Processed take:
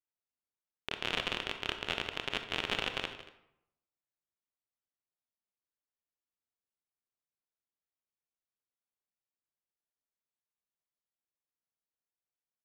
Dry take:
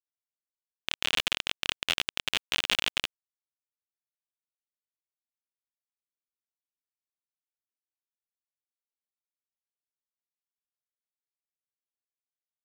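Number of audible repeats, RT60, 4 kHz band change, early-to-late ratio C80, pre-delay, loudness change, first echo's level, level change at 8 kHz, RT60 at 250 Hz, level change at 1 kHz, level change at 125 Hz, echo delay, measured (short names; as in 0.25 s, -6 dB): 2, 0.75 s, -8.0 dB, 10.0 dB, 25 ms, -6.5 dB, -14.5 dB, -13.5 dB, 0.80 s, -1.0 dB, +1.0 dB, 0.153 s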